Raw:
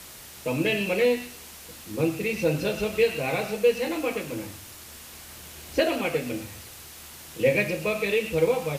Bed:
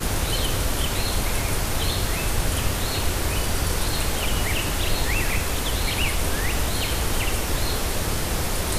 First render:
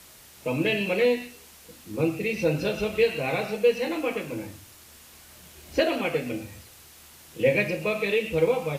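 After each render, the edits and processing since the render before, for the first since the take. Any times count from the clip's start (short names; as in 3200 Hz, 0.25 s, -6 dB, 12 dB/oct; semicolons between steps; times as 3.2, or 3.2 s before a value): noise print and reduce 6 dB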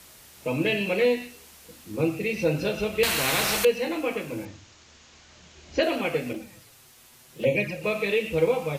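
3.03–3.65 spectral compressor 4:1; 4.45–5.83 elliptic low-pass 6900 Hz; 6.33–7.84 envelope flanger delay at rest 8.9 ms, full sweep at -17.5 dBFS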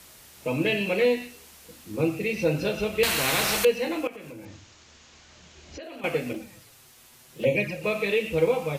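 4.07–6.04 compressor, threshold -38 dBFS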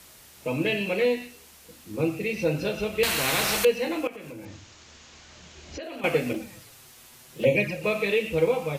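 vocal rider 2 s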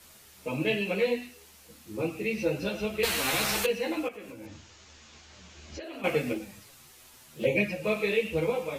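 ensemble effect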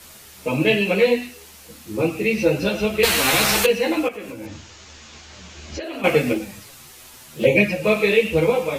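gain +10 dB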